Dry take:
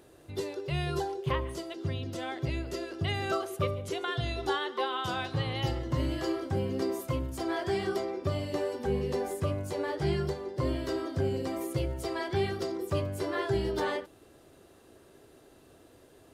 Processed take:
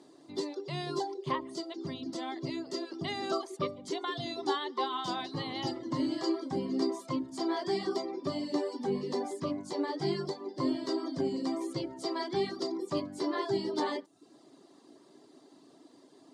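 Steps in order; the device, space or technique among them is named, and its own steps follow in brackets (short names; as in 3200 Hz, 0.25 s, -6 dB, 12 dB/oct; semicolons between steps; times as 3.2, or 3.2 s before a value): reverb removal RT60 0.54 s; television speaker (speaker cabinet 170–8500 Hz, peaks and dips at 280 Hz +8 dB, 500 Hz -7 dB, 1000 Hz +4 dB, 1500 Hz -9 dB, 2600 Hz -9 dB, 4600 Hz +7 dB)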